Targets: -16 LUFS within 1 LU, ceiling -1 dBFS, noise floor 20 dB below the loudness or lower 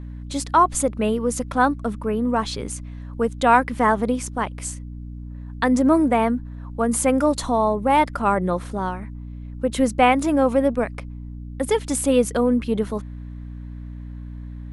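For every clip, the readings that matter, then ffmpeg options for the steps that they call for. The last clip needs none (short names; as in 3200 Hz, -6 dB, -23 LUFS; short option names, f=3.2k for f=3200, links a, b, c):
hum 60 Hz; harmonics up to 300 Hz; hum level -32 dBFS; loudness -21.0 LUFS; peak -3.0 dBFS; loudness target -16.0 LUFS
-> -af "bandreject=f=60:t=h:w=6,bandreject=f=120:t=h:w=6,bandreject=f=180:t=h:w=6,bandreject=f=240:t=h:w=6,bandreject=f=300:t=h:w=6"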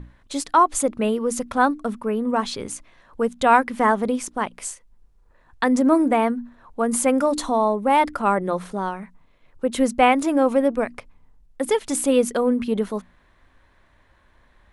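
hum none; loudness -21.5 LUFS; peak -3.5 dBFS; loudness target -16.0 LUFS
-> -af "volume=5.5dB,alimiter=limit=-1dB:level=0:latency=1"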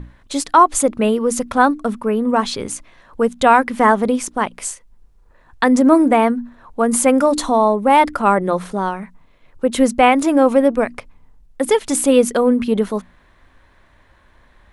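loudness -16.0 LUFS; peak -1.0 dBFS; noise floor -52 dBFS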